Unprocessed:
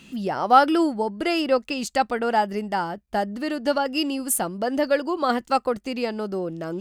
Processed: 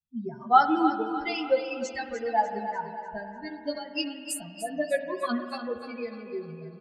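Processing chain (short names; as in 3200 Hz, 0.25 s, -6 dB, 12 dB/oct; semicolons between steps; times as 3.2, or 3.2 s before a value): per-bin expansion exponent 3; LPF 7500 Hz 12 dB/oct; doubler 13 ms -3.5 dB; feedback echo 0.298 s, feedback 44%, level -10 dB; reverb RT60 2.7 s, pre-delay 45 ms, DRR 8.5 dB; gain -2.5 dB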